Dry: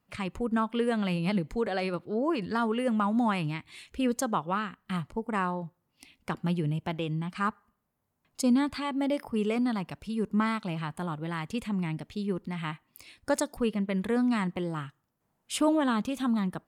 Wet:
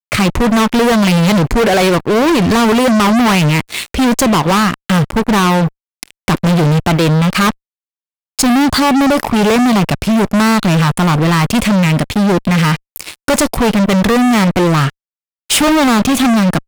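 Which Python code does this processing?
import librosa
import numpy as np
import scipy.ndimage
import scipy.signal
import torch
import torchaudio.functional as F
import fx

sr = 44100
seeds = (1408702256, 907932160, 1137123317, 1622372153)

y = fx.peak_eq(x, sr, hz=2400.0, db=-13.5, octaves=0.41, at=(8.52, 9.23))
y = fx.fuzz(y, sr, gain_db=41.0, gate_db=-49.0)
y = y * 10.0 ** (4.0 / 20.0)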